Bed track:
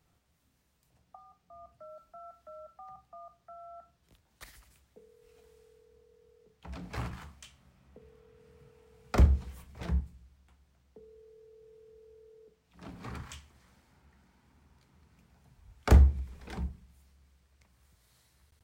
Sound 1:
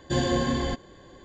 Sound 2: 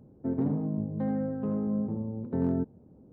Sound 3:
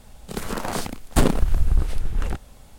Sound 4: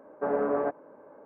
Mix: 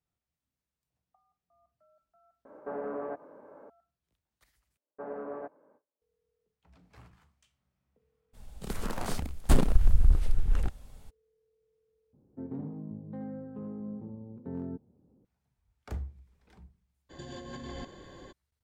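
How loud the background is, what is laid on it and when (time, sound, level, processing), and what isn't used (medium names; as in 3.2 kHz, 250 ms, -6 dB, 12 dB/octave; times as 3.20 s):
bed track -18 dB
2.45 s: add 4 -0.5 dB + compression 2:1, threshold -39 dBFS
4.77 s: replace with 4 -12 dB + gate with hold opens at -40 dBFS, closes at -47 dBFS, hold 252 ms, range -34 dB
8.33 s: add 3 -9 dB, fades 0.02 s + bass shelf 120 Hz +8 dB
12.13 s: replace with 2 -10 dB + band-stop 640 Hz, Q 15
17.09 s: add 1 -8 dB, fades 0.02 s + compressor with a negative ratio -34 dBFS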